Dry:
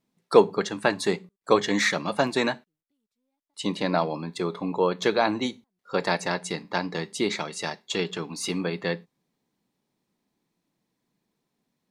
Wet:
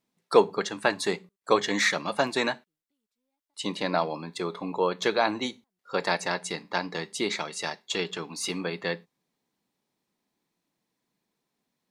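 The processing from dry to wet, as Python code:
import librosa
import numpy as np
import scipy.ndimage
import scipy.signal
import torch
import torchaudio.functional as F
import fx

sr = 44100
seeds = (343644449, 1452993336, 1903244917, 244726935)

y = fx.low_shelf(x, sr, hz=360.0, db=-7.0)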